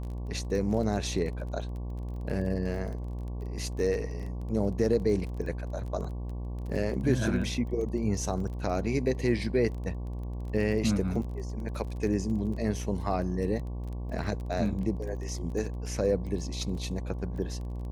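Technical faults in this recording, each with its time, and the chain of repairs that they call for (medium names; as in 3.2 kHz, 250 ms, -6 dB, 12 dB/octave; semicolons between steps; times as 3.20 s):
buzz 60 Hz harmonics 19 -35 dBFS
crackle 23 per s -37 dBFS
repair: de-click; de-hum 60 Hz, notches 19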